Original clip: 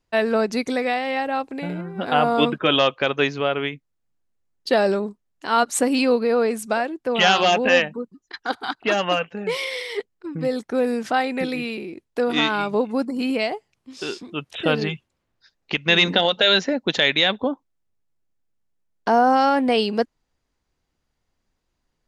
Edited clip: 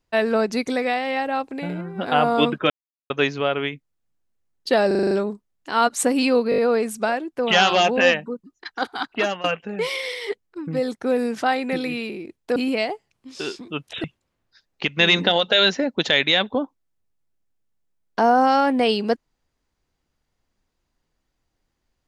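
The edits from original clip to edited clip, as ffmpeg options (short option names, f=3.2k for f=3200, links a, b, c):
-filter_complex "[0:a]asplit=16[a][b][c][d][e][f][g][h][i][j][k][l][m][n][o][p];[a]atrim=end=2.7,asetpts=PTS-STARTPTS,afade=t=out:st=2.696:d=0.004:c=hsin[q];[b]atrim=start=2.7:end=3.1,asetpts=PTS-STARTPTS,volume=0[r];[c]atrim=start=3.1:end=4.912,asetpts=PTS-STARTPTS,afade=t=in:d=0.004:c=hsin[s];[d]atrim=start=4.868:end=4.912[t];[e]atrim=start=4.868:end=4.912[u];[f]atrim=start=4.868:end=4.912[v];[g]atrim=start=4.868:end=4.912[w];[h]atrim=start=4.868:end=4.912[x];[i]atrim=start=4.868:end=6.282[y];[j]atrim=start=6.258:end=6.282[z];[k]atrim=start=6.258:end=6.282[aa];[l]atrim=start=6.258:end=6.282[ab];[m]atrim=start=6.258:end=9.12,asetpts=PTS-STARTPTS,afade=t=out:st=2.532:d=0.33:c=qsin:silence=0.112202[ac];[n]atrim=start=9.12:end=12.242,asetpts=PTS-STARTPTS,afade=t=in:d=0.004:c=hsin:silence=0.112202[ad];[o]atrim=start=13.178:end=14.662[ae];[p]atrim=start=14.928[af];[q][r][s]concat=n=3:v=0:a=1[ag];[ag][t]acrossfade=d=0.004:c1=hsin:c2=hsin[ah];[ah][u]acrossfade=d=0.004:c1=hsin:c2=hsin[ai];[ai][v]acrossfade=d=0.004:c1=hsin:c2=hsin[aj];[aj][w]acrossfade=d=0.004:c1=hsin:c2=hsin[ak];[ak][x]acrossfade=d=0.004:c1=hsin:c2=hsin[al];[al][y]acrossfade=d=0.004:c1=hsin:c2=hsin[am];[am][z]acrossfade=d=0.004:c1=hsin:c2=hsin[an];[an][aa]acrossfade=d=0.004:c1=hsin:c2=hsin[ao];[ao][ab]acrossfade=d=0.004:c1=hsin:c2=hsin[ap];[ac][ad]concat=n=2:v=0:a=1[aq];[ap][aq]acrossfade=d=0.004:c1=hsin:c2=hsin[ar];[ar][ae]acrossfade=d=0.004:c1=hsin:c2=hsin[as];[as][af]acrossfade=d=0.004:c1=hsin:c2=hsin"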